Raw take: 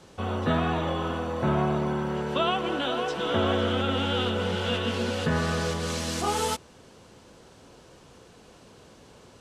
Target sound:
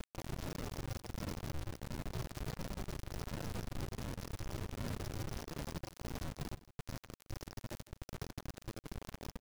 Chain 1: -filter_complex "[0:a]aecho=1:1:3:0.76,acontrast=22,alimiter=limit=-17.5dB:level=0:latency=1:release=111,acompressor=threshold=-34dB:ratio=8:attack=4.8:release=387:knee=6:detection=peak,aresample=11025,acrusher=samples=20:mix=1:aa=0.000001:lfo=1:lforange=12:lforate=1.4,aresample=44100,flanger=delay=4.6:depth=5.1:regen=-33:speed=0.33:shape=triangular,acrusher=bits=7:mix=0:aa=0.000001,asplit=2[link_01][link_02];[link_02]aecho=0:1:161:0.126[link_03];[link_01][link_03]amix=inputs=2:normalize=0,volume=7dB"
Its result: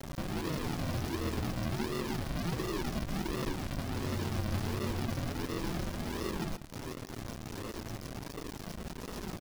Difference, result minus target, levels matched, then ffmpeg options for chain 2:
downward compressor: peak gain reduction −8.5 dB; sample-and-hold swept by an LFO: distortion −6 dB
-filter_complex "[0:a]aecho=1:1:3:0.76,acontrast=22,alimiter=limit=-17.5dB:level=0:latency=1:release=111,acompressor=threshold=-43.5dB:ratio=8:attack=4.8:release=387:knee=6:detection=peak,aresample=11025,acrusher=samples=39:mix=1:aa=0.000001:lfo=1:lforange=23.4:lforate=1.4,aresample=44100,flanger=delay=4.6:depth=5.1:regen=-33:speed=0.33:shape=triangular,acrusher=bits=7:mix=0:aa=0.000001,asplit=2[link_01][link_02];[link_02]aecho=0:1:161:0.126[link_03];[link_01][link_03]amix=inputs=2:normalize=0,volume=7dB"

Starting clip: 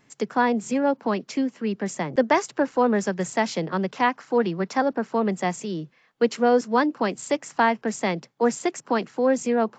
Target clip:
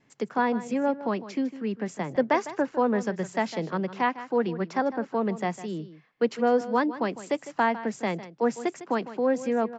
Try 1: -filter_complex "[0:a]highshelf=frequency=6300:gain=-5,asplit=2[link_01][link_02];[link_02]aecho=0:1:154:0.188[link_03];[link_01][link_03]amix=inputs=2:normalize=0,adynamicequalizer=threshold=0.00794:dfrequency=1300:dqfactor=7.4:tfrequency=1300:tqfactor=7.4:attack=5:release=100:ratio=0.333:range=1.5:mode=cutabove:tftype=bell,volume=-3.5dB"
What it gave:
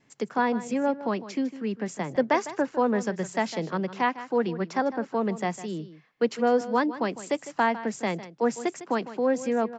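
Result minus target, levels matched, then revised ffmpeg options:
8,000 Hz band +4.0 dB
-filter_complex "[0:a]highshelf=frequency=6300:gain=-13,asplit=2[link_01][link_02];[link_02]aecho=0:1:154:0.188[link_03];[link_01][link_03]amix=inputs=2:normalize=0,adynamicequalizer=threshold=0.00794:dfrequency=1300:dqfactor=7.4:tfrequency=1300:tqfactor=7.4:attack=5:release=100:ratio=0.333:range=1.5:mode=cutabove:tftype=bell,volume=-3.5dB"

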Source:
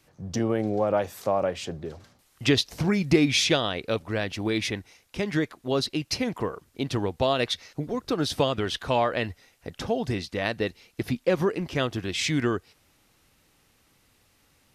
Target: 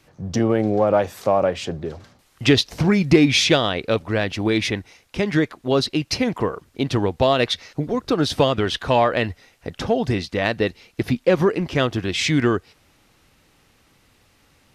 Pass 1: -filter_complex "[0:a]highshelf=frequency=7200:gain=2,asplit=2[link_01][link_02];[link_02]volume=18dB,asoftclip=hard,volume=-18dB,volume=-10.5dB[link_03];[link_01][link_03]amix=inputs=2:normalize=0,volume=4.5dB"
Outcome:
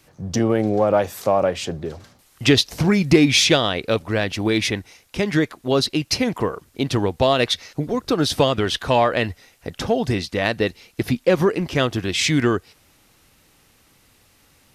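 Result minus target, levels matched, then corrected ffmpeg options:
8,000 Hz band +4.0 dB
-filter_complex "[0:a]highshelf=frequency=7200:gain=-8,asplit=2[link_01][link_02];[link_02]volume=18dB,asoftclip=hard,volume=-18dB,volume=-10.5dB[link_03];[link_01][link_03]amix=inputs=2:normalize=0,volume=4.5dB"

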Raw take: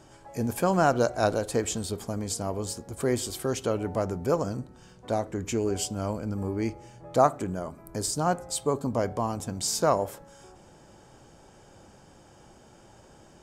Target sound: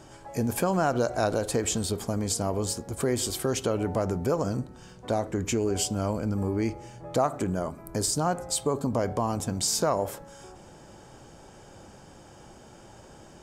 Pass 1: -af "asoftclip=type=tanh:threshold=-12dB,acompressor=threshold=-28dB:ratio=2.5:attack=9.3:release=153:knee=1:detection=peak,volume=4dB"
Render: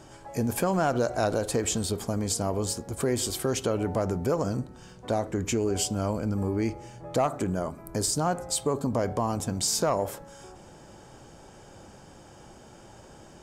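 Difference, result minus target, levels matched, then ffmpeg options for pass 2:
soft clipping: distortion +16 dB
-af "asoftclip=type=tanh:threshold=-2.5dB,acompressor=threshold=-28dB:ratio=2.5:attack=9.3:release=153:knee=1:detection=peak,volume=4dB"

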